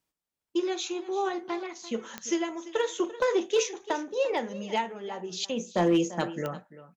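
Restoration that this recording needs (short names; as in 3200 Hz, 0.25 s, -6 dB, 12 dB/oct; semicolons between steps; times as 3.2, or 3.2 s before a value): clip repair -16.5 dBFS; de-click; inverse comb 0.342 s -16.5 dB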